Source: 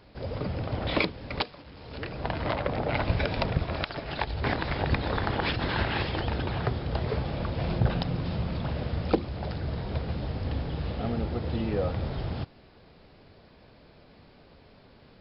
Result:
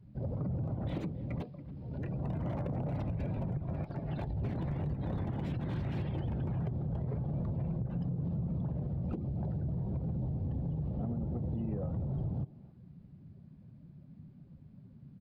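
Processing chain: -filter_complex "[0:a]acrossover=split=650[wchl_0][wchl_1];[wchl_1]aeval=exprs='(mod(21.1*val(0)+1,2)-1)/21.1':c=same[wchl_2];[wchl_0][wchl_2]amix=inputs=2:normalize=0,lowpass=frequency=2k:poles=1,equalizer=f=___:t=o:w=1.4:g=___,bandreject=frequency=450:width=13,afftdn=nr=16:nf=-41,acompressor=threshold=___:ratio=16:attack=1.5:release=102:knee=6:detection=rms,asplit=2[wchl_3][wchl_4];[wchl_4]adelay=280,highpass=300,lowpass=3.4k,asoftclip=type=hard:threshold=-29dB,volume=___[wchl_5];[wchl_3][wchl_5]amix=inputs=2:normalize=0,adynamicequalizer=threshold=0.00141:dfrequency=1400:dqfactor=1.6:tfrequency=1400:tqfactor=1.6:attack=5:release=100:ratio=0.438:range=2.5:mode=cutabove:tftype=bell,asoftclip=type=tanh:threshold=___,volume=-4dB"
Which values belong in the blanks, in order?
150, 13.5, -24dB, -20dB, -22dB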